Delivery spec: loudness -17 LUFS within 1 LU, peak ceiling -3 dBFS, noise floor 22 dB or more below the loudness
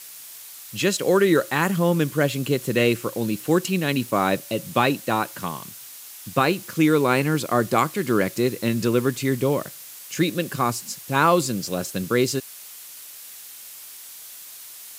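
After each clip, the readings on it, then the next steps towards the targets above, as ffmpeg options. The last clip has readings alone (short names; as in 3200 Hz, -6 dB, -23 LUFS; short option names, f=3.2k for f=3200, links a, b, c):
noise floor -41 dBFS; noise floor target -45 dBFS; loudness -22.5 LUFS; peak -5.0 dBFS; loudness target -17.0 LUFS
-> -af "afftdn=nr=6:nf=-41"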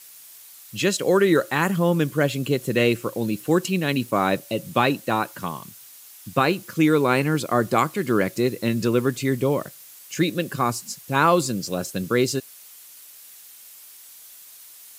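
noise floor -46 dBFS; loudness -22.5 LUFS; peak -5.5 dBFS; loudness target -17.0 LUFS
-> -af "volume=5.5dB,alimiter=limit=-3dB:level=0:latency=1"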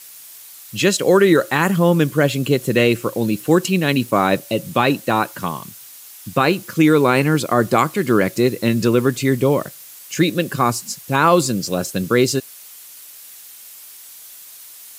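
loudness -17.5 LUFS; peak -3.0 dBFS; noise floor -40 dBFS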